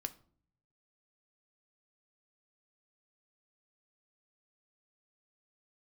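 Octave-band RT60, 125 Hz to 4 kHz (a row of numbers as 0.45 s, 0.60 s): 1.1 s, 0.80 s, 0.55 s, 0.45 s, 0.35 s, 0.30 s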